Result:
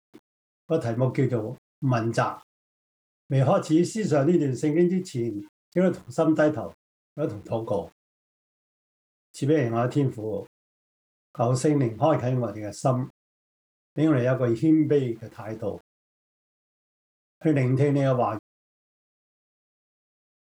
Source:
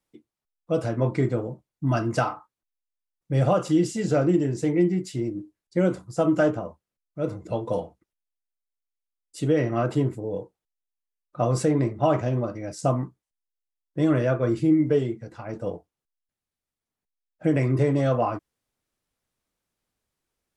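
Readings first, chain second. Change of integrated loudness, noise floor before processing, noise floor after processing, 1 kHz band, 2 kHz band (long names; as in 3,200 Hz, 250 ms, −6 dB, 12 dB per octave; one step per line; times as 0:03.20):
0.0 dB, below −85 dBFS, below −85 dBFS, 0.0 dB, 0.0 dB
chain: centre clipping without the shift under −50.5 dBFS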